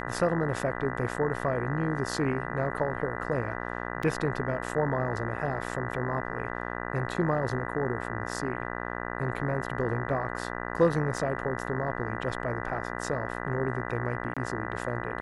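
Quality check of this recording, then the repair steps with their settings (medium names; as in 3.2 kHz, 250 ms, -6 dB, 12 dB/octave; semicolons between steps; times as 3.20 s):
buzz 60 Hz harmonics 33 -35 dBFS
4.03 s: dropout 3.2 ms
11.18 s: dropout 2.7 ms
14.34–14.37 s: dropout 26 ms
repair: de-hum 60 Hz, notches 33; interpolate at 4.03 s, 3.2 ms; interpolate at 11.18 s, 2.7 ms; interpolate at 14.34 s, 26 ms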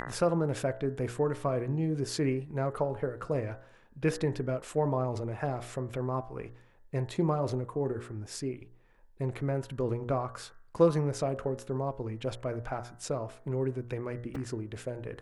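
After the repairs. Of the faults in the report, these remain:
nothing left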